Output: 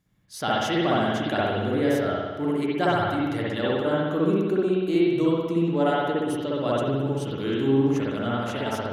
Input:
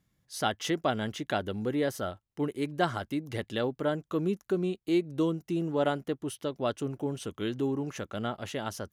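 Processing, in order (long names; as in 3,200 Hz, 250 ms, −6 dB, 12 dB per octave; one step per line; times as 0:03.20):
spring reverb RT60 1.4 s, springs 59 ms, chirp 40 ms, DRR −6.5 dB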